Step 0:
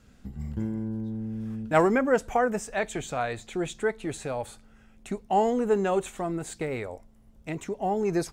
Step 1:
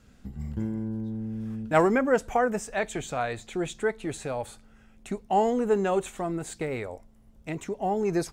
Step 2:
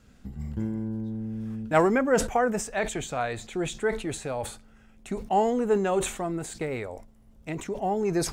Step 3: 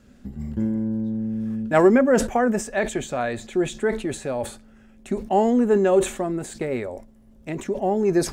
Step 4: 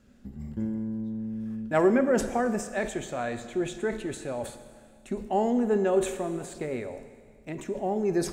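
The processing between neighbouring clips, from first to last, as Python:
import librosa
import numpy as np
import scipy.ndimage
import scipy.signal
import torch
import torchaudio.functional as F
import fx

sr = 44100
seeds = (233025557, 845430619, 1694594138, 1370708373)

y1 = x
y2 = fx.sustainer(y1, sr, db_per_s=110.0)
y3 = fx.small_body(y2, sr, hz=(240.0, 370.0, 560.0, 1700.0), ring_ms=55, db=9)
y3 = y3 * librosa.db_to_amplitude(1.0)
y4 = fx.rev_schroeder(y3, sr, rt60_s=1.9, comb_ms=26, drr_db=10.0)
y4 = y4 * librosa.db_to_amplitude(-6.5)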